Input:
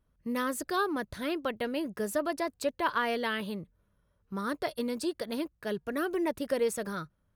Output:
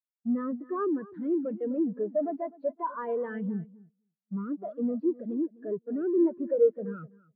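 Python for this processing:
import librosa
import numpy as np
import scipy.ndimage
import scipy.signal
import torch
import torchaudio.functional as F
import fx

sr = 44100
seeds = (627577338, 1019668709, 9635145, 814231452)

p1 = fx.fuzz(x, sr, gain_db=55.0, gate_db=-59.0)
p2 = x + (p1 * librosa.db_to_amplitude(-11.5))
p3 = fx.bandpass_edges(p2, sr, low_hz=150.0, high_hz=5400.0)
p4 = fx.air_absorb(p3, sr, metres=230.0)
p5 = fx.echo_feedback(p4, sr, ms=253, feedback_pct=31, wet_db=-8.5)
y = fx.spectral_expand(p5, sr, expansion=2.5)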